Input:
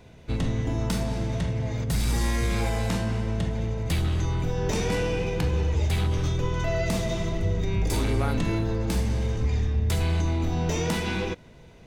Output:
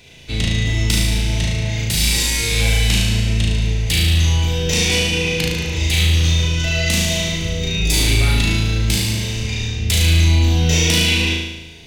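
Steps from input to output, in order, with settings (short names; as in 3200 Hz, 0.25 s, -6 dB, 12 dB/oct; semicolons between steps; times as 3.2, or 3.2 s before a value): resonant high shelf 1800 Hz +12.5 dB, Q 1.5; flutter echo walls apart 6.3 m, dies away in 1 s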